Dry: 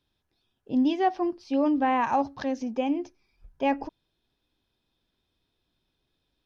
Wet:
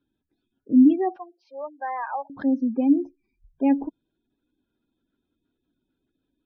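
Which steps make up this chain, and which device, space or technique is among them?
spectral gate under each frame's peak -20 dB strong; inside a cardboard box (low-pass 3 kHz 12 dB/octave; small resonant body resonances 270/1400 Hz, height 15 dB, ringing for 25 ms); 1.16–2.30 s: steep high-pass 580 Hz 36 dB/octave; trim -5.5 dB

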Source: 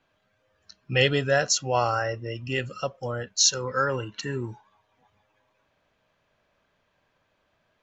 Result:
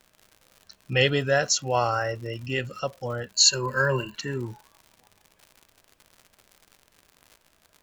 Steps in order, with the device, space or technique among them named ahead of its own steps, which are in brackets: vinyl LP (crackle 110 per s -38 dBFS; pink noise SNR 40 dB); 3.34–4.15 s: rippled EQ curve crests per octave 1.4, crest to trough 15 dB

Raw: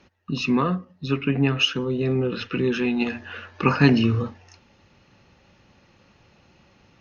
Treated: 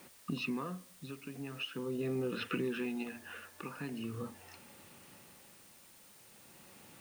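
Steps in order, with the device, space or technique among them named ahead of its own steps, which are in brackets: medium wave at night (band-pass 150–3600 Hz; compression 4:1, threshold -34 dBFS, peak gain reduction 18.5 dB; tremolo 0.42 Hz, depth 71%; whistle 9 kHz -66 dBFS; white noise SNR 19 dB)

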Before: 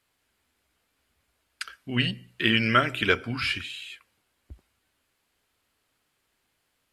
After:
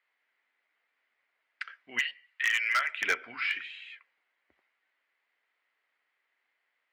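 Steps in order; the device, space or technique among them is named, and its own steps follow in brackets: megaphone (band-pass 600–2700 Hz; peaking EQ 2 kHz +11.5 dB 0.4 oct; hard clipper -14.5 dBFS, distortion -12 dB); 1.99–3.02 s: high-pass 1.1 kHz 12 dB/octave; trim -5 dB

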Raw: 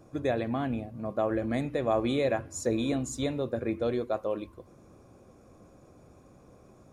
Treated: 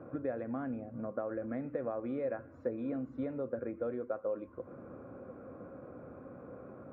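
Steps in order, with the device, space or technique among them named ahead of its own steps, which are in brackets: bass amplifier (compression 5:1, threshold -44 dBFS, peak gain reduction 19.5 dB; cabinet simulation 87–2000 Hz, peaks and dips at 260 Hz +7 dB, 520 Hz +9 dB, 1.4 kHz +9 dB); trim +3 dB

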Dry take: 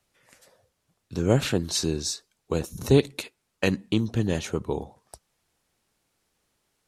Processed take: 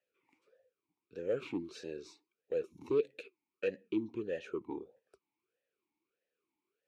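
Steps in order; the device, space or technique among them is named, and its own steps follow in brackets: talk box (valve stage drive 16 dB, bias 0.3; talking filter e-u 1.6 Hz)

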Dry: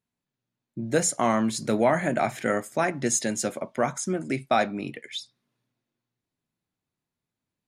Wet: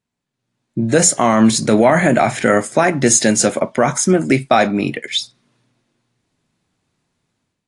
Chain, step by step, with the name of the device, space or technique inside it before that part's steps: low-bitrate web radio (level rider gain up to 11 dB; peak limiter -8 dBFS, peak gain reduction 6 dB; trim +6 dB; AAC 48 kbps 22.05 kHz)

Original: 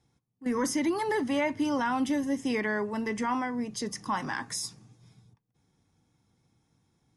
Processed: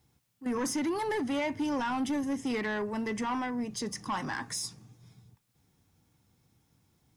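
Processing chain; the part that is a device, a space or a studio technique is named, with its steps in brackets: open-reel tape (saturation -26 dBFS, distortion -14 dB; peaking EQ 72 Hz +4.5 dB 0.97 oct; white noise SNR 44 dB)

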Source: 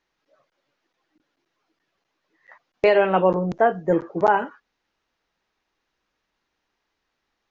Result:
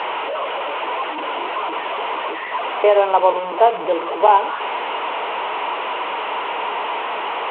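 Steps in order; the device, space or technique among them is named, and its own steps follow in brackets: digital answering machine (band-pass 320–3100 Hz; one-bit delta coder 16 kbps, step -21 dBFS; cabinet simulation 410–4000 Hz, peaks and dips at 440 Hz +7 dB, 650 Hz +4 dB, 970 Hz +9 dB, 1.7 kHz -8 dB, 2.9 kHz +5 dB); peaking EQ 910 Hz +2.5 dB 0.63 oct

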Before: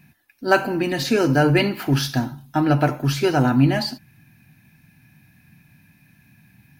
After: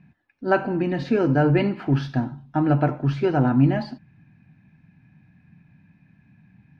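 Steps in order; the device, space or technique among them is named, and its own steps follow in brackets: phone in a pocket (low-pass 3.4 kHz 12 dB/octave; peaking EQ 180 Hz +5 dB 0.27 oct; treble shelf 2 kHz -11 dB); trim -1.5 dB

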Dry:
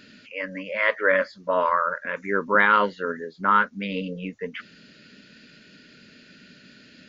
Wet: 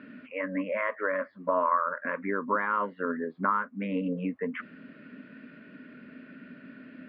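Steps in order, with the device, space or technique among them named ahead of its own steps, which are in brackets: bass amplifier (compression 5:1, threshold -29 dBFS, peak gain reduction 14.5 dB; cabinet simulation 87–2200 Hz, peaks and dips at 110 Hz -5 dB, 260 Hz +10 dB, 640 Hz +5 dB, 1.1 kHz +9 dB)

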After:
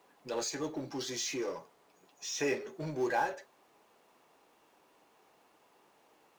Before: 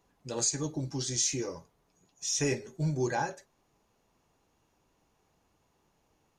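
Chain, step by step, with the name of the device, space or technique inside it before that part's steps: phone line with mismatched companding (band-pass 360–3400 Hz; companding laws mixed up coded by mu)

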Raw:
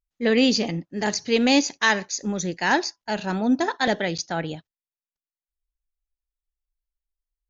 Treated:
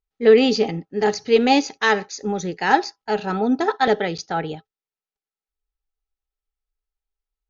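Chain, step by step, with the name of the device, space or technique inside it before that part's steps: inside a cardboard box (low-pass 5.1 kHz 12 dB/octave; small resonant body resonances 430/800/1300 Hz, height 14 dB, ringing for 95 ms)

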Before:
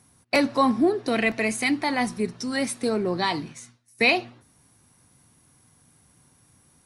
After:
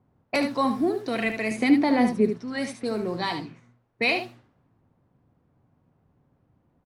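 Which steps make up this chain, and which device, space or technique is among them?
cassette deck with a dynamic noise filter (white noise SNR 31 dB; level-controlled noise filter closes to 660 Hz, open at -19.5 dBFS); 1.51–2.30 s: graphic EQ 250/500/8000 Hz +9/+9/-5 dB; delay 74 ms -8 dB; trim -4 dB

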